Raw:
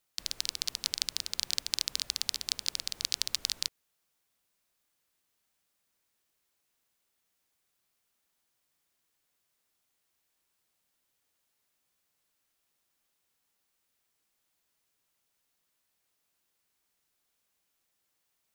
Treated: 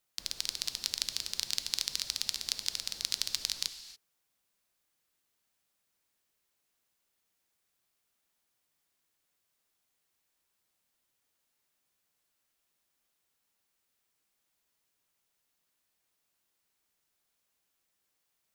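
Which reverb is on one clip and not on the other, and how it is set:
reverb whose tail is shaped and stops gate 310 ms flat, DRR 10 dB
level −1.5 dB

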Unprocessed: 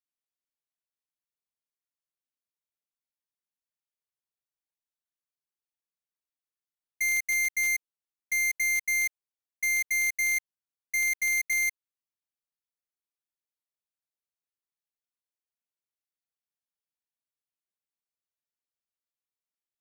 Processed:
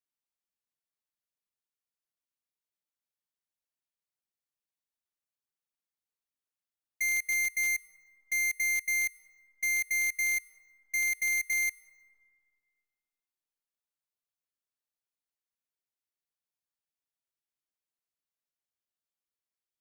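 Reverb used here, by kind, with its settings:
dense smooth reverb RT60 2.6 s, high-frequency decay 0.3×, pre-delay 85 ms, DRR 18.5 dB
level −2.5 dB

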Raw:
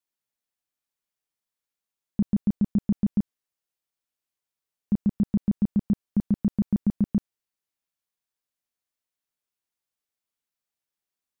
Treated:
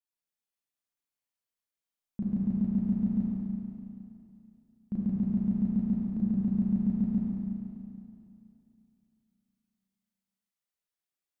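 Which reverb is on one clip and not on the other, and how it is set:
four-comb reverb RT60 2.8 s, combs from 32 ms, DRR −5.5 dB
level −10.5 dB

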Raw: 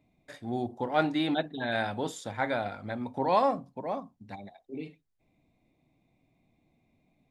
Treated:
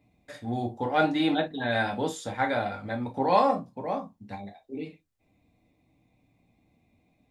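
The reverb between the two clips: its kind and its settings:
reverb whose tail is shaped and stops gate 80 ms falling, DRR 2 dB
level +1 dB

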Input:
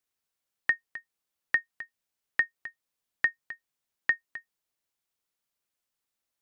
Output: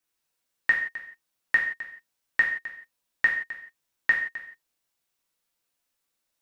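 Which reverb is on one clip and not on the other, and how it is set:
reverb whose tail is shaped and stops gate 200 ms falling, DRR −2 dB
level +1.5 dB

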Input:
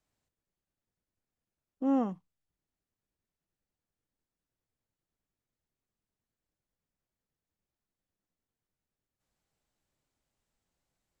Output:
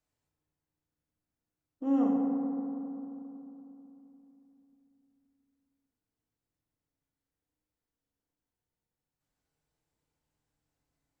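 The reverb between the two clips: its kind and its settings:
feedback delay network reverb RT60 3.2 s, low-frequency decay 1.25×, high-frequency decay 0.3×, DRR −2 dB
level −5 dB

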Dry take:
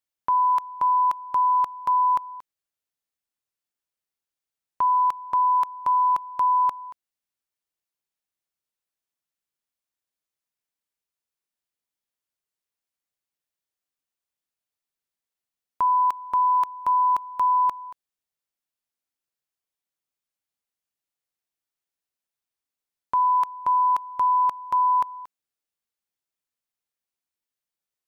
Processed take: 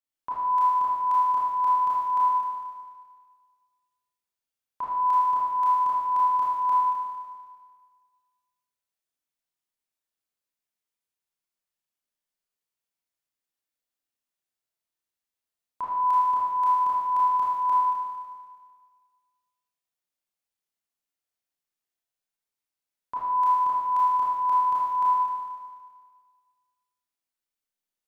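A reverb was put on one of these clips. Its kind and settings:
four-comb reverb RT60 1.7 s, combs from 25 ms, DRR −8 dB
level −9.5 dB

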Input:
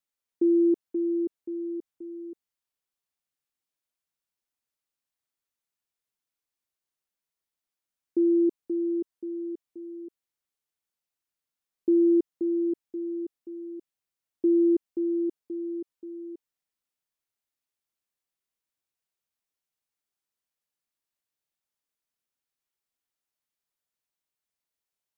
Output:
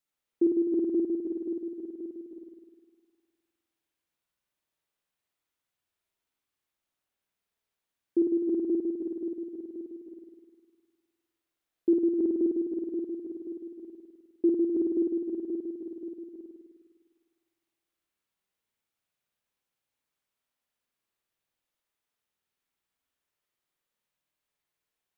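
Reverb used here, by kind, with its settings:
spring reverb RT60 1.6 s, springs 51 ms, chirp 20 ms, DRR −4 dB

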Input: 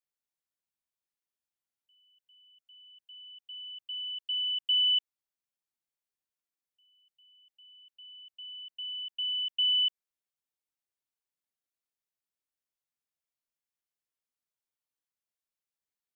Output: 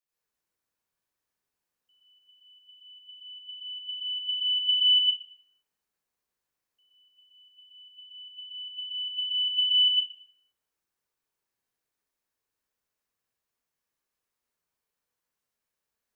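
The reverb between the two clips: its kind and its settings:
dense smooth reverb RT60 1.8 s, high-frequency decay 0.3×, pre-delay 75 ms, DRR −9 dB

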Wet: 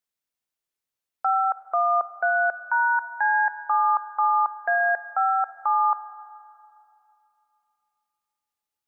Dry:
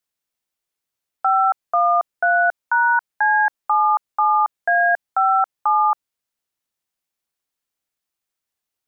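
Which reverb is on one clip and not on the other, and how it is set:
four-comb reverb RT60 2.8 s, combs from 32 ms, DRR 13 dB
level −5 dB

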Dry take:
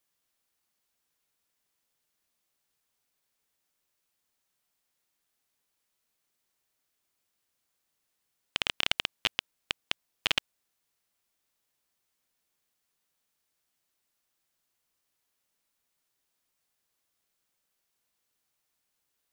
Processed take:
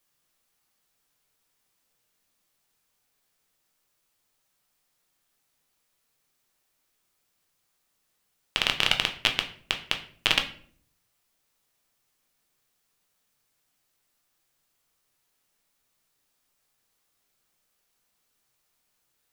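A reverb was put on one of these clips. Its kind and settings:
rectangular room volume 58 cubic metres, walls mixed, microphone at 0.4 metres
level +4.5 dB

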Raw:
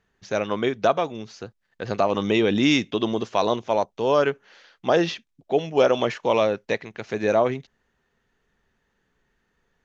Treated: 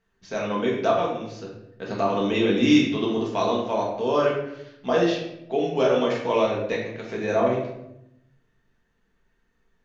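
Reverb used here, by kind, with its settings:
rectangular room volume 220 cubic metres, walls mixed, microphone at 1.6 metres
level −6.5 dB

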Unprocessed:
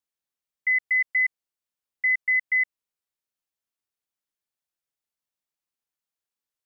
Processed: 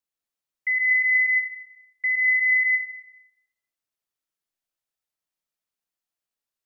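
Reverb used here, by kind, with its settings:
comb and all-pass reverb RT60 0.88 s, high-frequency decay 0.9×, pre-delay 100 ms, DRR 1.5 dB
level −1.5 dB

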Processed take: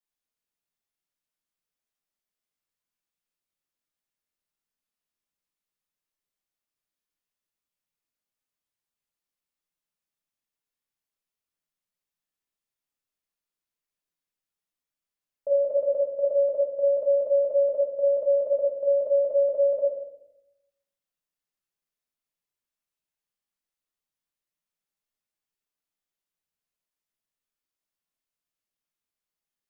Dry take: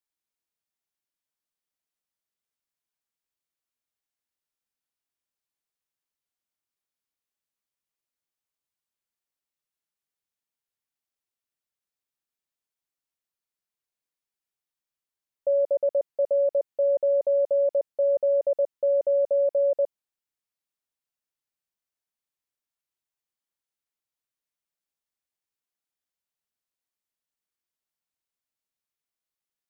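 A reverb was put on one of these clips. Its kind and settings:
rectangular room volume 220 cubic metres, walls mixed, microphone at 1.4 metres
level −4.5 dB

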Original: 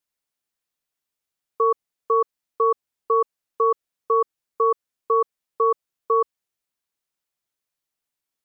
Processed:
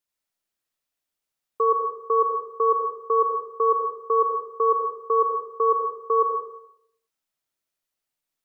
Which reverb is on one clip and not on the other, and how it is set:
comb and all-pass reverb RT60 0.73 s, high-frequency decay 0.8×, pre-delay 45 ms, DRR 1 dB
level −2 dB

